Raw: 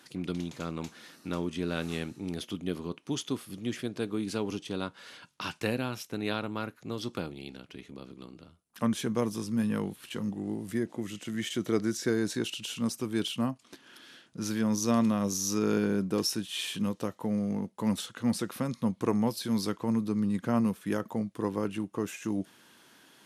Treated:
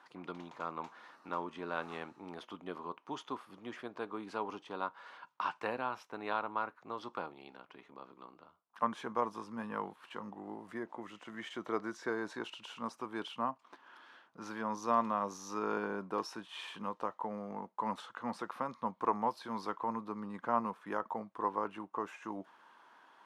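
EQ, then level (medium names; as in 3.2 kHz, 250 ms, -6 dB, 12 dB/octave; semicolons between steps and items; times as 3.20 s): band-pass filter 990 Hz, Q 2.8; +7.0 dB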